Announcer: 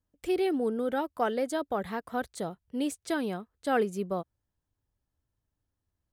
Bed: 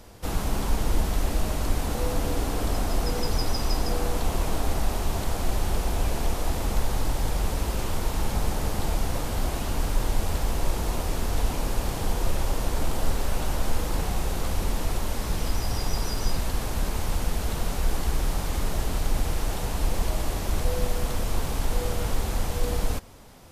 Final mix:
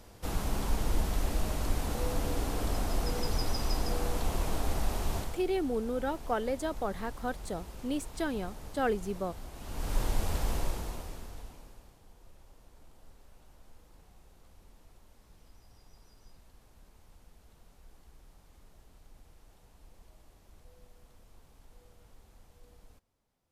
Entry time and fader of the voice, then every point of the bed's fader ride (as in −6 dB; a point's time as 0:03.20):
5.10 s, −3.0 dB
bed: 0:05.18 −5.5 dB
0:05.44 −18 dB
0:09.53 −18 dB
0:09.96 −5 dB
0:10.56 −5 dB
0:12.01 −31.5 dB